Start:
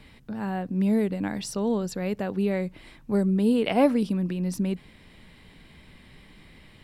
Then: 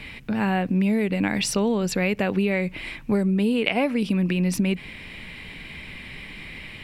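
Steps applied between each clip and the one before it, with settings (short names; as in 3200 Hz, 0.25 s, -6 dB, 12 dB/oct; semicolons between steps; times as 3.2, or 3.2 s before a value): bell 2400 Hz +12 dB 0.75 oct; compressor 12:1, threshold -27 dBFS, peak gain reduction 13.5 dB; gain +8.5 dB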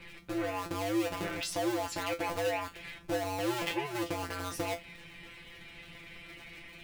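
cycle switcher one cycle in 2, inverted; resonator 170 Hz, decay 0.18 s, harmonics all, mix 100%; gain -1 dB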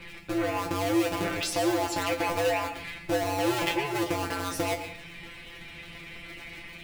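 reverb RT60 0.40 s, pre-delay 0.111 s, DRR 8 dB; gain +5.5 dB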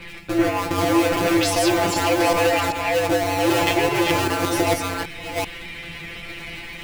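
reverse delay 0.389 s, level -1.5 dB; gain +6.5 dB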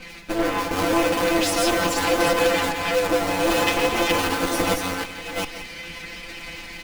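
minimum comb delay 3.9 ms; echo 0.174 s -11.5 dB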